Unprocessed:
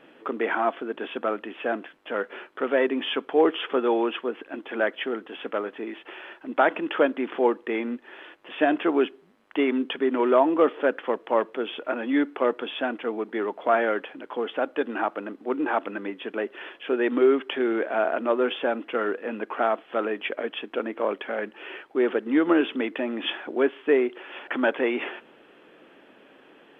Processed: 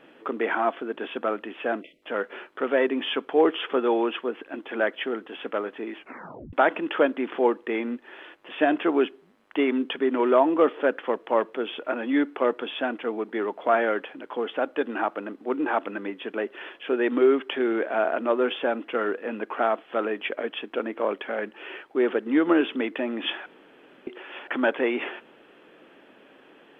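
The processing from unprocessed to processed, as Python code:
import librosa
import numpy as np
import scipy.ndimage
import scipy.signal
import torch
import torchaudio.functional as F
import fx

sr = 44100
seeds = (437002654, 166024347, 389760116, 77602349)

y = fx.spec_erase(x, sr, start_s=1.82, length_s=0.21, low_hz=670.0, high_hz=1900.0)
y = fx.edit(y, sr, fx.tape_stop(start_s=5.97, length_s=0.56),
    fx.room_tone_fill(start_s=23.46, length_s=0.61), tone=tone)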